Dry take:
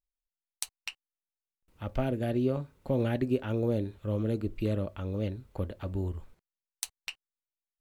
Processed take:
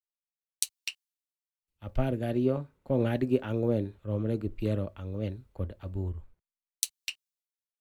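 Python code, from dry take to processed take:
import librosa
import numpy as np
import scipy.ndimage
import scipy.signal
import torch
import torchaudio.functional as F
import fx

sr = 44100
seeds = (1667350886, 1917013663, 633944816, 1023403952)

y = fx.band_widen(x, sr, depth_pct=70)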